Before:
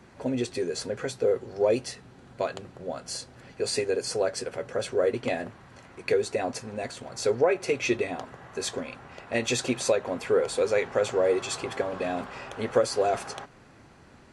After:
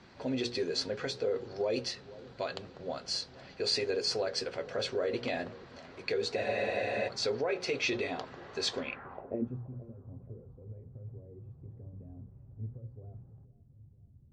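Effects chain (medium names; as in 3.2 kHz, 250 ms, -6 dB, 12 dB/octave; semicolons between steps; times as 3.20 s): hum notches 60/120/180/240/300/360/420/480/540 Hz; peak limiter -20 dBFS, peak gain reduction 10 dB; low-pass sweep 4.5 kHz -> 110 Hz, 8.78–9.64 s; bucket-brigade echo 478 ms, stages 4096, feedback 48%, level -19 dB; spectral freeze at 6.38 s, 0.68 s; trim -3 dB; MP3 56 kbps 32 kHz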